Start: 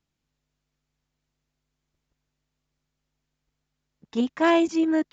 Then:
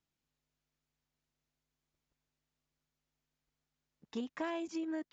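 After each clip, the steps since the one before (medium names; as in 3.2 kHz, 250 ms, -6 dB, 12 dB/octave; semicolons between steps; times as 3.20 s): bass shelf 200 Hz -5 dB; compression 12:1, threshold -29 dBFS, peak gain reduction 13.5 dB; trim -6 dB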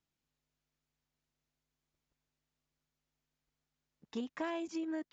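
no audible change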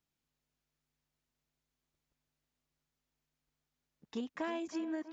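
tape echo 323 ms, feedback 61%, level -12 dB, low-pass 1.8 kHz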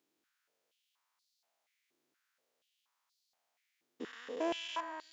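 spectrogram pixelated in time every 400 ms; step-sequenced high-pass 4.2 Hz 340–4400 Hz; trim +5.5 dB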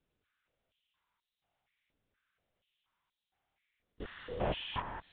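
LPC vocoder at 8 kHz whisper; trim +1 dB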